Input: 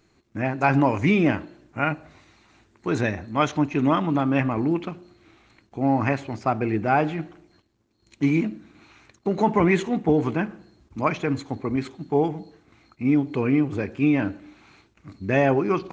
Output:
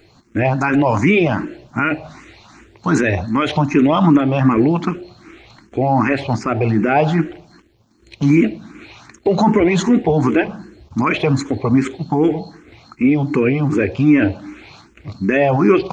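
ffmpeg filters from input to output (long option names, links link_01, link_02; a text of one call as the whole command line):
ffmpeg -i in.wav -filter_complex "[0:a]alimiter=level_in=16.5dB:limit=-1dB:release=50:level=0:latency=1,asplit=2[link_01][link_02];[link_02]afreqshift=2.6[link_03];[link_01][link_03]amix=inputs=2:normalize=1,volume=-1dB" out.wav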